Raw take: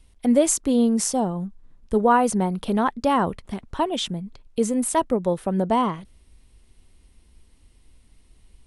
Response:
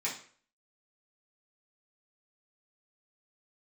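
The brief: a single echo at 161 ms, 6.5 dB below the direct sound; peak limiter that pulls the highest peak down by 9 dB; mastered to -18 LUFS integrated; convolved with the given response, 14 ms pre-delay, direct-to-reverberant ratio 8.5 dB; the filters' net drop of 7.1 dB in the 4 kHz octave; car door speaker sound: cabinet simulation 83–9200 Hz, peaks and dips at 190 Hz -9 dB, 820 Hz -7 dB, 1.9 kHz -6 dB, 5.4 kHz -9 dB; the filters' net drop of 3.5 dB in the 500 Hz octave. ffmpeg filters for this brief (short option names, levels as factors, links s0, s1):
-filter_complex "[0:a]equalizer=f=500:t=o:g=-3,equalizer=f=4000:t=o:g=-7.5,alimiter=limit=0.133:level=0:latency=1,aecho=1:1:161:0.473,asplit=2[s0][s1];[1:a]atrim=start_sample=2205,adelay=14[s2];[s1][s2]afir=irnorm=-1:irlink=0,volume=0.211[s3];[s0][s3]amix=inputs=2:normalize=0,highpass=83,equalizer=f=190:t=q:w=4:g=-9,equalizer=f=820:t=q:w=4:g=-7,equalizer=f=1900:t=q:w=4:g=-6,equalizer=f=5400:t=q:w=4:g=-9,lowpass=f=9200:w=0.5412,lowpass=f=9200:w=1.3066,volume=3.55"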